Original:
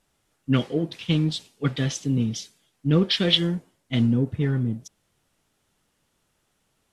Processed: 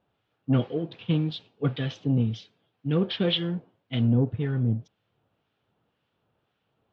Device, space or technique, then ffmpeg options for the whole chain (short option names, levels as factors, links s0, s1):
guitar amplifier with harmonic tremolo: -filter_complex "[0:a]acrossover=split=1300[s0][s1];[s0]aeval=exprs='val(0)*(1-0.5/2+0.5/2*cos(2*PI*1.9*n/s))':c=same[s2];[s1]aeval=exprs='val(0)*(1-0.5/2-0.5/2*cos(2*PI*1.9*n/s))':c=same[s3];[s2][s3]amix=inputs=2:normalize=0,asoftclip=type=tanh:threshold=0.188,highpass=80,equalizer=f=110:t=q:w=4:g=7,equalizer=f=470:t=q:w=4:g=4,equalizer=f=730:t=q:w=4:g=3,equalizer=f=2000:t=q:w=4:g=-6,lowpass=f=3400:w=0.5412,lowpass=f=3400:w=1.3066"